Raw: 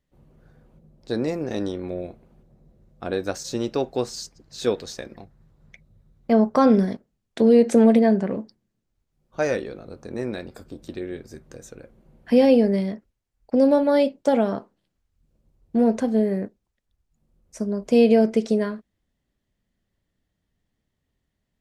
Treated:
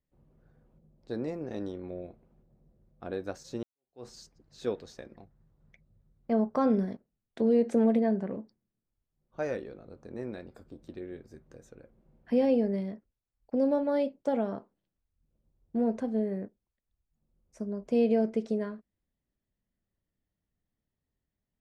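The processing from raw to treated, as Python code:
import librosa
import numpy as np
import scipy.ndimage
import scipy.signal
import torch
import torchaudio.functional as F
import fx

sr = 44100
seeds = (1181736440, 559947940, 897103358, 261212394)

y = fx.edit(x, sr, fx.fade_in_span(start_s=3.63, length_s=0.43, curve='exp'), tone=tone)
y = fx.high_shelf(y, sr, hz=2700.0, db=-9.5)
y = F.gain(torch.from_numpy(y), -9.0).numpy()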